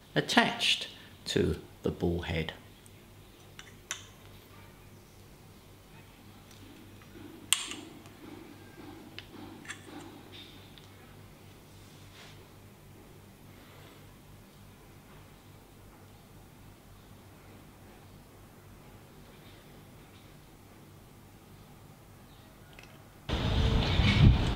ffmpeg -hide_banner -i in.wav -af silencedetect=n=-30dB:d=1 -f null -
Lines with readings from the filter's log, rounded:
silence_start: 2.49
silence_end: 3.59 | silence_duration: 1.10
silence_start: 3.93
silence_end: 7.53 | silence_duration: 3.60
silence_start: 7.72
silence_end: 9.19 | silence_duration: 1.47
silence_start: 9.71
silence_end: 23.29 | silence_duration: 13.58